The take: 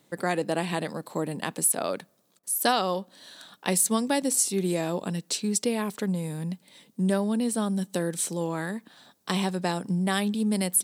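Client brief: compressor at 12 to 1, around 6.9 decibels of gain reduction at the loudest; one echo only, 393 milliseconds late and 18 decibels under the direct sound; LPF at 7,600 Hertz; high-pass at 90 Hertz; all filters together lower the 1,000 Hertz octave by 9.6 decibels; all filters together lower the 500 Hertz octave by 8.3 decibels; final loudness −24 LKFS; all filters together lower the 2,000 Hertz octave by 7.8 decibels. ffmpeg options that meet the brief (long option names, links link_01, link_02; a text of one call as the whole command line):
ffmpeg -i in.wav -af "highpass=90,lowpass=7600,equalizer=frequency=500:width_type=o:gain=-8,equalizer=frequency=1000:width_type=o:gain=-8.5,equalizer=frequency=2000:width_type=o:gain=-6.5,acompressor=threshold=-31dB:ratio=12,aecho=1:1:393:0.126,volume=12dB" out.wav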